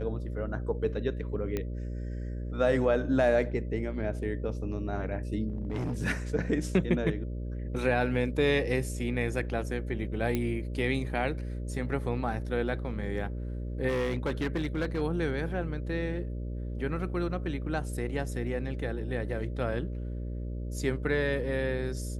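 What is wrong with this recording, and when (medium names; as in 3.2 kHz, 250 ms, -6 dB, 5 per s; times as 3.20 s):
buzz 60 Hz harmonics 10 -35 dBFS
1.57 s: pop -18 dBFS
5.48–6.02 s: clipped -28.5 dBFS
10.35 s: pop -16 dBFS
13.88–15.02 s: clipped -25 dBFS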